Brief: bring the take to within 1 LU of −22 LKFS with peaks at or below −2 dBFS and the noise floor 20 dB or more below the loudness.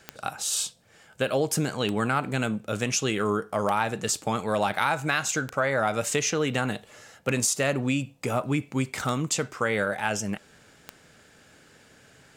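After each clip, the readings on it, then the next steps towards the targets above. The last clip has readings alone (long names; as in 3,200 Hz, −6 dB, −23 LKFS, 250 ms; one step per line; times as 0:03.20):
number of clicks 7; integrated loudness −27.0 LKFS; sample peak −8.5 dBFS; target loudness −22.0 LKFS
→ click removal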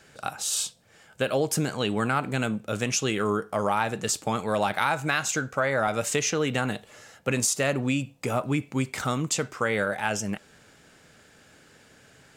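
number of clicks 1; integrated loudness −27.0 LKFS; sample peak −8.5 dBFS; target loudness −22.0 LKFS
→ level +5 dB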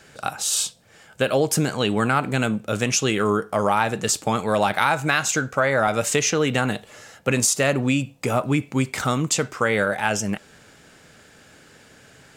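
integrated loudness −22.0 LKFS; sample peak −3.5 dBFS; background noise floor −51 dBFS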